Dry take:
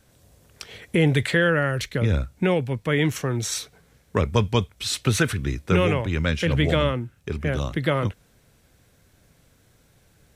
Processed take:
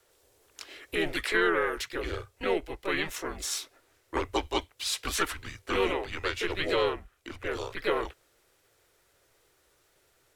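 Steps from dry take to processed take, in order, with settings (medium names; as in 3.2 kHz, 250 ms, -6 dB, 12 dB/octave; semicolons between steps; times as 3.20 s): frequency shift -160 Hz; harmony voices -7 st -15 dB, +4 st -3 dB; resonant low shelf 290 Hz -13 dB, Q 1.5; trim -6 dB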